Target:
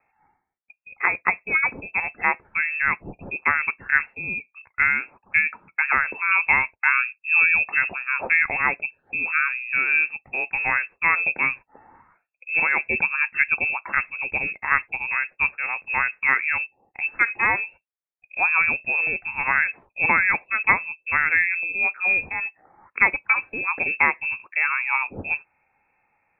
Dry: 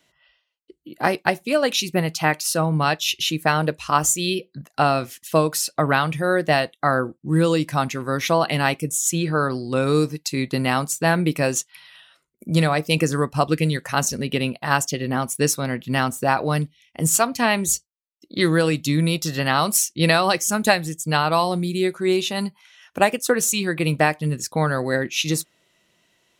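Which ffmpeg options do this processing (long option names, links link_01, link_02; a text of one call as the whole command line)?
ffmpeg -i in.wav -af "asetnsamples=nb_out_samples=441:pad=0,asendcmd='6.31 highpass f 50;7.87 highpass f 240',highpass=frequency=420:poles=1,lowpass=frequency=2400:width_type=q:width=0.5098,lowpass=frequency=2400:width_type=q:width=0.6013,lowpass=frequency=2400:width_type=q:width=0.9,lowpass=frequency=2400:width_type=q:width=2.563,afreqshift=-2800" out.wav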